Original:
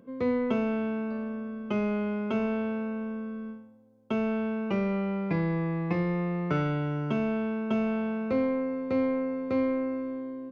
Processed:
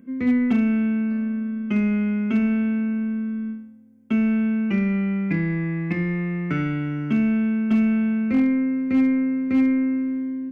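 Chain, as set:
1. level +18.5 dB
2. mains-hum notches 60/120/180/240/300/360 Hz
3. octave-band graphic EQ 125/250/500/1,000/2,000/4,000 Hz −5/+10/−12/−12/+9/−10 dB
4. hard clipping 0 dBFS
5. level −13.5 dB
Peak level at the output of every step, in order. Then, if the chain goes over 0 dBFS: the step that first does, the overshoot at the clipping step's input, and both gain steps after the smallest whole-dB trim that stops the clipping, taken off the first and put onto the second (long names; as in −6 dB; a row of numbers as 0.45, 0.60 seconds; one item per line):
+2.5, +2.5, +4.0, 0.0, −13.5 dBFS
step 1, 4.0 dB
step 1 +14.5 dB, step 5 −9.5 dB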